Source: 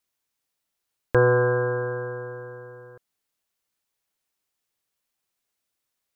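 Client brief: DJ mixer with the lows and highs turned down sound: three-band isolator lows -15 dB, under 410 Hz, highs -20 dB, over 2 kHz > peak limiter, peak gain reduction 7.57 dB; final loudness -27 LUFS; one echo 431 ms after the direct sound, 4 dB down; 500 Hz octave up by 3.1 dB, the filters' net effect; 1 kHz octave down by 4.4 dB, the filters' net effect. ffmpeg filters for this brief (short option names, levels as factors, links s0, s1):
-filter_complex "[0:a]acrossover=split=410 2000:gain=0.178 1 0.1[s0][s1][s2];[s0][s1][s2]amix=inputs=3:normalize=0,equalizer=f=500:t=o:g=7.5,equalizer=f=1000:t=o:g=-6.5,aecho=1:1:431:0.631,volume=0.75,alimiter=limit=0.119:level=0:latency=1"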